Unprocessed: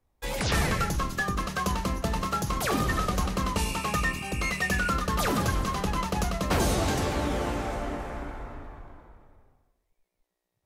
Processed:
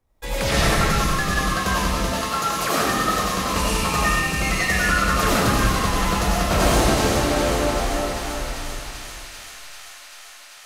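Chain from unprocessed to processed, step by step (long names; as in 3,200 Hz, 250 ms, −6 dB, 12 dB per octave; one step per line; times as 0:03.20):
0:02.03–0:03.52: high-pass filter 600 Hz → 150 Hz 6 dB per octave
delay with a high-pass on its return 391 ms, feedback 82%, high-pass 2,300 Hz, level −7 dB
comb and all-pass reverb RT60 1 s, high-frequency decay 0.95×, pre-delay 50 ms, DRR −5 dB
level +2 dB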